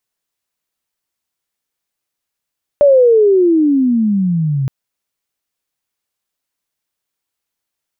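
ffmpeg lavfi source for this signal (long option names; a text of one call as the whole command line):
ffmpeg -f lavfi -i "aevalsrc='pow(10,(-4.5-9*t/1.87)/20)*sin(2*PI*590*1.87/log(130/590)*(exp(log(130/590)*t/1.87)-1))':duration=1.87:sample_rate=44100" out.wav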